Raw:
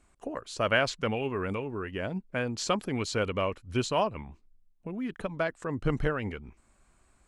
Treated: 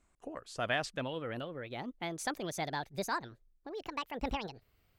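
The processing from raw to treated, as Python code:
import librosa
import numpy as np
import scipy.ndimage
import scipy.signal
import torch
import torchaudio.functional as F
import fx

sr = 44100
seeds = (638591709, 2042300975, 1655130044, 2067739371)

y = fx.speed_glide(x, sr, from_pct=96, to_pct=196)
y = F.gain(torch.from_numpy(y), -7.5).numpy()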